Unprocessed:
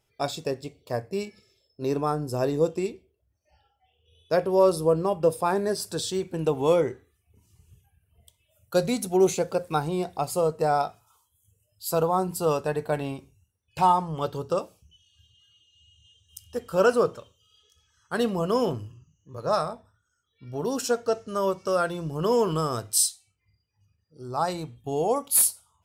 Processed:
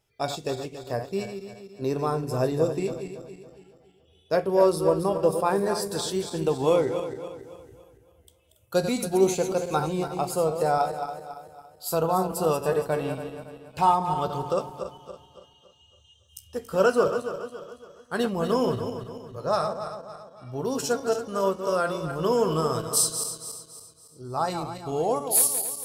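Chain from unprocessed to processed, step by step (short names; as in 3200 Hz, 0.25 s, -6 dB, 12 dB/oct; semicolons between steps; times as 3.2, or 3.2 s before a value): regenerating reverse delay 0.14 s, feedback 64%, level -8 dB; resonator 65 Hz, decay 0.17 s, mix 50%; gain +2 dB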